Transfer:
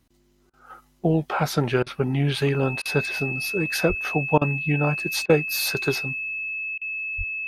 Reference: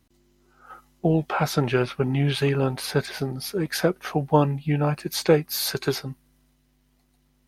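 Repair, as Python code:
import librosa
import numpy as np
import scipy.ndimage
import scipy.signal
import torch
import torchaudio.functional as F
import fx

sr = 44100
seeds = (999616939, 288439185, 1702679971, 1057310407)

y = fx.notch(x, sr, hz=2600.0, q=30.0)
y = fx.highpass(y, sr, hz=140.0, slope=24, at=(3.88, 4.0), fade=0.02)
y = fx.highpass(y, sr, hz=140.0, slope=24, at=(7.17, 7.29), fade=0.02)
y = fx.fix_interpolate(y, sr, at_s=(0.5, 1.83, 2.82, 4.38, 5.26, 6.78), length_ms=33.0)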